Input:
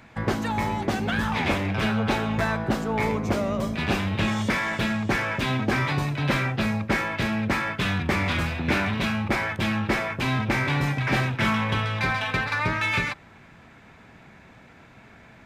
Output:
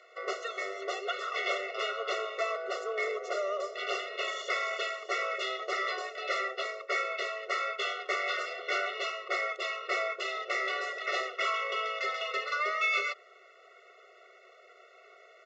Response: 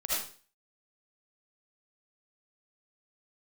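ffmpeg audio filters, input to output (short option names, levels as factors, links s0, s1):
-filter_complex "[0:a]acrossover=split=240|680|6200[s0][s1][s2][s3];[s1]asoftclip=type=tanh:threshold=0.0224[s4];[s0][s4][s2][s3]amix=inputs=4:normalize=0,aresample=16000,aresample=44100,afftfilt=real='re*eq(mod(floor(b*sr/1024/370),2),1)':imag='im*eq(mod(floor(b*sr/1024/370),2),1)':win_size=1024:overlap=0.75,volume=0.891"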